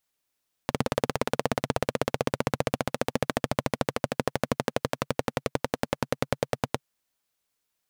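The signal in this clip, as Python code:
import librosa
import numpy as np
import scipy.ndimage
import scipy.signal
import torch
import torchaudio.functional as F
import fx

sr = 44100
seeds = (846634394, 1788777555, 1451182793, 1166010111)

y = fx.engine_single_rev(sr, seeds[0], length_s=6.12, rpm=2100, resonances_hz=(140.0, 240.0, 480.0), end_rpm=1100)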